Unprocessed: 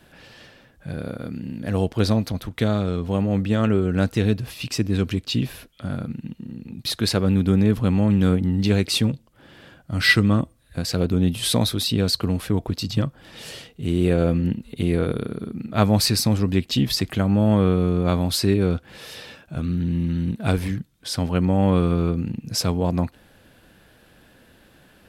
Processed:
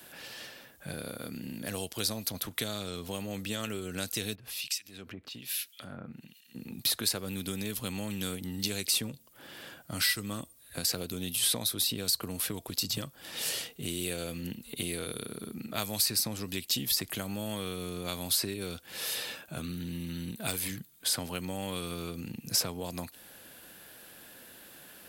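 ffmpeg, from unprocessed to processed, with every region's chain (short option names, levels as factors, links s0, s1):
-filter_complex "[0:a]asettb=1/sr,asplit=3[s0][s1][s2];[s0]atrim=end=4.354[s3];[s1]atrim=start=4.35:end=6.55,asetpts=PTS-STARTPTS,afade=t=in:d=0.004:c=qsin,afade=t=out:st=2.196:d=0.004:c=qsin,equalizer=f=3200:t=o:w=2.3:g=5.5,acompressor=threshold=0.0224:ratio=6:attack=3.2:release=140:knee=1:detection=peak,acrossover=split=1900[s4][s5];[s4]aeval=exprs='val(0)*(1-1/2+1/2*cos(2*PI*1.2*n/s))':c=same[s6];[s5]aeval=exprs='val(0)*(1-1/2-1/2*cos(2*PI*1.2*n/s))':c=same[s7];[s6][s7]amix=inputs=2:normalize=0[s8];[s2]atrim=start=6.546[s9];[s3][s8]acrossfade=d=0.004:c1=hsin:c2=qsin[s10];[s10][s9]acrossfade=d=0.004:c1=qsin:c2=hsin,asettb=1/sr,asplit=3[s11][s12][s13];[s11]atrim=end=19.084[s14];[s12]atrim=start=19.08:end=21.19,asetpts=PTS-STARTPTS,afade=t=in:d=0.004:c=qsin,afade=t=out:st=2.106:d=0.004:c=qsin,bandreject=f=5500:w=11,volume=3.55,asoftclip=hard,volume=0.282[s15];[s13]atrim=start=21.186[s16];[s14][s15]acrossfade=d=0.004:c1=hsin:c2=qsin[s17];[s17][s16]acrossfade=d=0.004:c1=qsin:c2=hsin,aemphasis=mode=production:type=bsi,acrossover=split=86|2700|5800[s18][s19][s20][s21];[s18]acompressor=threshold=0.00282:ratio=4[s22];[s19]acompressor=threshold=0.0141:ratio=4[s23];[s20]acompressor=threshold=0.0158:ratio=4[s24];[s21]acompressor=threshold=0.0282:ratio=4[s25];[s22][s23][s24][s25]amix=inputs=4:normalize=0"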